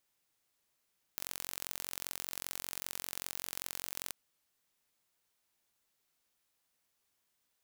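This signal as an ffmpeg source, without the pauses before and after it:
-f lavfi -i "aevalsrc='0.299*eq(mod(n,978),0)*(0.5+0.5*eq(mod(n,1956),0))':d=2.93:s=44100"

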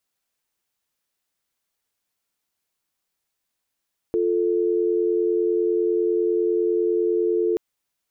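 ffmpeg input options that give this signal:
-f lavfi -i "aevalsrc='0.0891*(sin(2*PI*350*t)+sin(2*PI*440*t))':d=3.43:s=44100"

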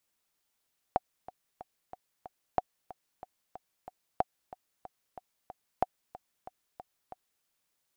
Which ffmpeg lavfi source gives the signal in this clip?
-f lavfi -i "aevalsrc='pow(10,(-12-18.5*gte(mod(t,5*60/185),60/185))/20)*sin(2*PI*741*mod(t,60/185))*exp(-6.91*mod(t,60/185)/0.03)':d=6.48:s=44100"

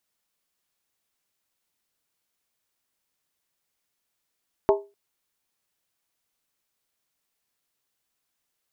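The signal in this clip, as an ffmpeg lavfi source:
-f lavfi -i "aevalsrc='0.224*pow(10,-3*t/0.28)*sin(2*PI*403*t)+0.141*pow(10,-3*t/0.222)*sin(2*PI*642.4*t)+0.0891*pow(10,-3*t/0.192)*sin(2*PI*860.8*t)+0.0562*pow(10,-3*t/0.185)*sin(2*PI*925.3*t)+0.0355*pow(10,-3*t/0.172)*sin(2*PI*1069.2*t)':d=0.25:s=44100"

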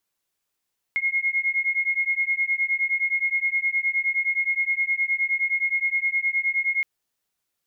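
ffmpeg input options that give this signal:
-f lavfi -i "aevalsrc='0.0631*(sin(2*PI*2150*t)+sin(2*PI*2159.6*t))':d=5.87:s=44100"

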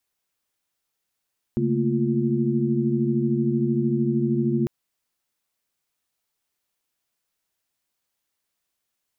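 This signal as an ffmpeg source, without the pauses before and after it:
-f lavfi -i "aevalsrc='0.0562*(sin(2*PI*138.59*t)+sin(2*PI*220*t)+sin(2*PI*233.08*t)+sin(2*PI*349.23*t))':d=3.1:s=44100"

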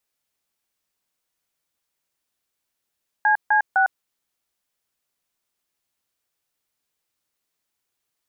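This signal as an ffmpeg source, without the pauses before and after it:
-f lavfi -i "aevalsrc='0.141*clip(min(mod(t,0.254),0.104-mod(t,0.254))/0.002,0,1)*(eq(floor(t/0.254),0)*(sin(2*PI*852*mod(t,0.254))+sin(2*PI*1633*mod(t,0.254)))+eq(floor(t/0.254),1)*(sin(2*PI*852*mod(t,0.254))+sin(2*PI*1633*mod(t,0.254)))+eq(floor(t/0.254),2)*(sin(2*PI*770*mod(t,0.254))+sin(2*PI*1477*mod(t,0.254))))':d=0.762:s=44100"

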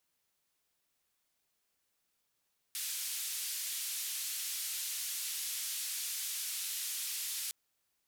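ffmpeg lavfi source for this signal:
-f lavfi -i "anoisesrc=c=white:d=4.76:r=44100:seed=1,highpass=f=2800,lowpass=f=14000,volume=-30.6dB"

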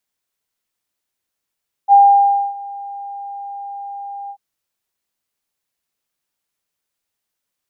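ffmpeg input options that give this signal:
-f lavfi -i "aevalsrc='0.631*sin(2*PI*802*t)':d=2.488:s=44100,afade=t=in:d=0.046,afade=t=out:st=0.046:d=0.61:silence=0.075,afade=t=out:st=2.42:d=0.068"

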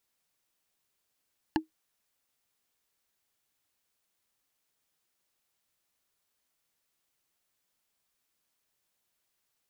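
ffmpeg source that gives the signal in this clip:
-f lavfi -i "aevalsrc='0.106*pow(10,-3*t/0.13)*sin(2*PI*316*t)+0.0841*pow(10,-3*t/0.038)*sin(2*PI*871.2*t)+0.0668*pow(10,-3*t/0.017)*sin(2*PI*1707.7*t)+0.0531*pow(10,-3*t/0.009)*sin(2*PI*2822.8*t)+0.0422*pow(10,-3*t/0.006)*sin(2*PI*4215.4*t)':d=0.45:s=44100"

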